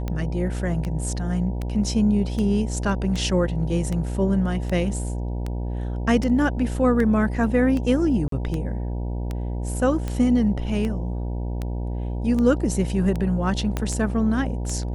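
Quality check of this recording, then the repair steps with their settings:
buzz 60 Hz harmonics 16 -27 dBFS
tick 78 rpm -16 dBFS
8.28–8.32 gap 43 ms
13.77 pop -11 dBFS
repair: de-click; de-hum 60 Hz, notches 16; interpolate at 8.28, 43 ms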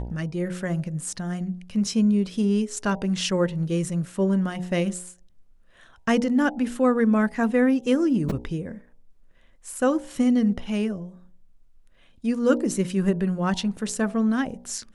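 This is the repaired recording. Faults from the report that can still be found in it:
13.77 pop

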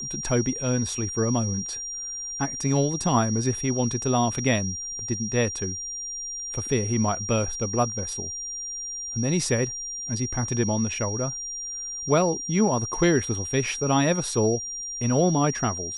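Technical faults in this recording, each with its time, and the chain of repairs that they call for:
tone 5700 Hz -31 dBFS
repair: notch 5700 Hz, Q 30

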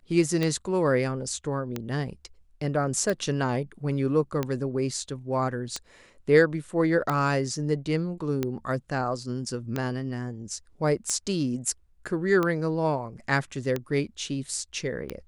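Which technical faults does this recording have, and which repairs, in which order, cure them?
tick 45 rpm -14 dBFS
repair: de-click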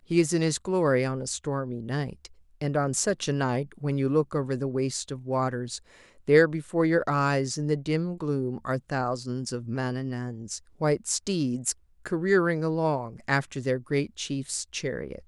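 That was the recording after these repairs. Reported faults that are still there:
none

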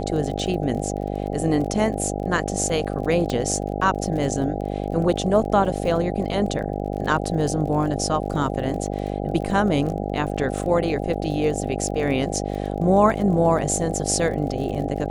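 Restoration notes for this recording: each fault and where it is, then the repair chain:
buzz 50 Hz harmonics 16 -27 dBFS
crackle 27/s -31 dBFS
3.3 pop -14 dBFS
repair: de-click; de-hum 50 Hz, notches 16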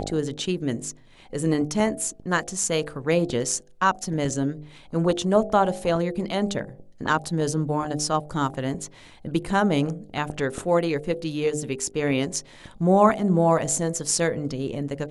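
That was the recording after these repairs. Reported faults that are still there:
none

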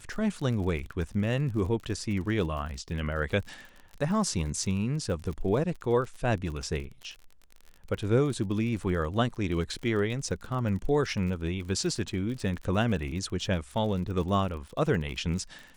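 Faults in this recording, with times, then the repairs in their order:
crackle 44/s -36 dBFS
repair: de-click

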